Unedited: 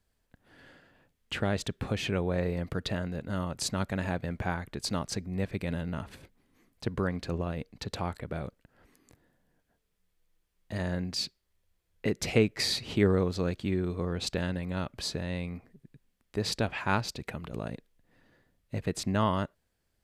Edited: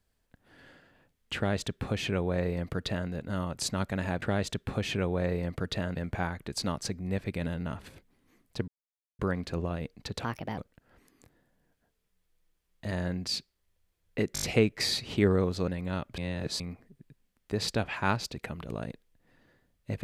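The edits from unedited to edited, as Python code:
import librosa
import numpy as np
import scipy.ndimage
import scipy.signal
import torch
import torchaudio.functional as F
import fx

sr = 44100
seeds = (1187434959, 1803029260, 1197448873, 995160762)

y = fx.edit(x, sr, fx.duplicate(start_s=1.36, length_s=1.73, to_s=4.22),
    fx.insert_silence(at_s=6.95, length_s=0.51),
    fx.speed_span(start_s=8.0, length_s=0.45, speed=1.33),
    fx.stutter(start_s=12.21, slice_s=0.02, count=5),
    fx.cut(start_s=13.47, length_s=1.05),
    fx.reverse_span(start_s=15.02, length_s=0.42), tone=tone)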